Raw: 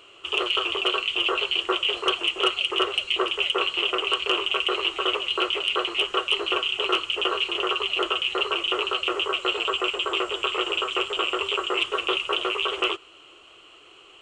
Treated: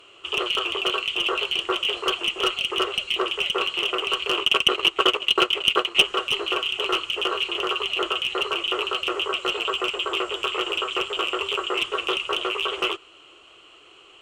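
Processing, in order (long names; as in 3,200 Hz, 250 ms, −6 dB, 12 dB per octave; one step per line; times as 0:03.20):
asymmetric clip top −16.5 dBFS
0:04.37–0:06.04: transient designer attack +12 dB, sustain −9 dB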